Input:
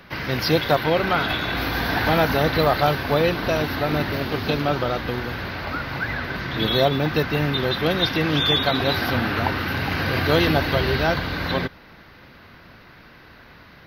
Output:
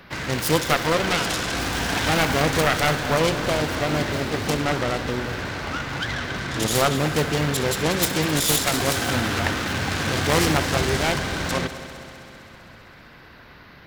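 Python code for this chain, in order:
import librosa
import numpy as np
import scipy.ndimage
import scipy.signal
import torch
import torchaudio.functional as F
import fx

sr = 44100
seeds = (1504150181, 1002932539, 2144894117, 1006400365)

y = fx.self_delay(x, sr, depth_ms=0.46)
y = fx.echo_heads(y, sr, ms=65, heads='first and third', feedback_pct=75, wet_db=-16)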